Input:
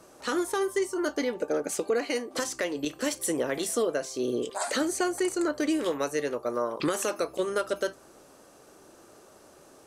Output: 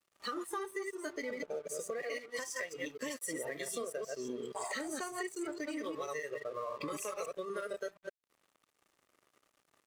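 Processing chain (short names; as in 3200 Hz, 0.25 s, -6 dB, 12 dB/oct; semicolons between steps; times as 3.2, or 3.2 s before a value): reverse delay 0.119 s, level -2 dB; spectral noise reduction 15 dB; small resonant body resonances 1200/1900 Hz, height 13 dB, ringing for 25 ms; in parallel at -2.5 dB: limiter -20 dBFS, peak gain reduction 8 dB; on the sum: compressor 4:1, threshold -39 dBFS, peak gain reduction 19 dB; crossover distortion -55.5 dBFS; low shelf 83 Hz -7.5 dB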